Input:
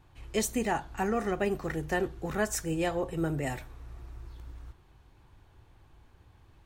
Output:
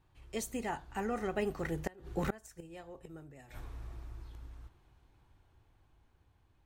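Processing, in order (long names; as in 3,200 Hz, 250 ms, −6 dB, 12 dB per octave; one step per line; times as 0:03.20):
source passing by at 0:02.96, 10 m/s, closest 3.6 metres
gate with flip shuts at −28 dBFS, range −27 dB
level +8.5 dB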